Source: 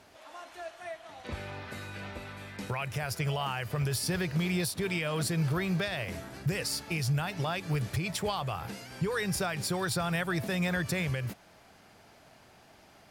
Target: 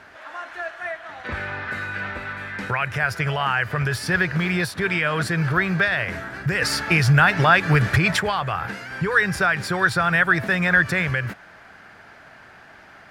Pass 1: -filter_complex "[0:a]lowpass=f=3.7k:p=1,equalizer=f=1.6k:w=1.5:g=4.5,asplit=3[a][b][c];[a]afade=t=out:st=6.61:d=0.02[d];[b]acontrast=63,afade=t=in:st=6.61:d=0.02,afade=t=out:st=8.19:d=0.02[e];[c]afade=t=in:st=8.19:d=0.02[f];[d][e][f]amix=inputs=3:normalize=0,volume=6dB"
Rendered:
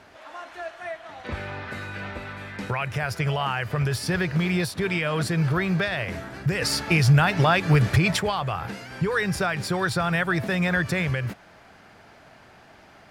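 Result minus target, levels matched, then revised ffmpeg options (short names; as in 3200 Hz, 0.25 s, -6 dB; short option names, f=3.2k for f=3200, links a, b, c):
2000 Hz band -4.5 dB
-filter_complex "[0:a]lowpass=f=3.7k:p=1,equalizer=f=1.6k:w=1.5:g=14,asplit=3[a][b][c];[a]afade=t=out:st=6.61:d=0.02[d];[b]acontrast=63,afade=t=in:st=6.61:d=0.02,afade=t=out:st=8.19:d=0.02[e];[c]afade=t=in:st=8.19:d=0.02[f];[d][e][f]amix=inputs=3:normalize=0,volume=6dB"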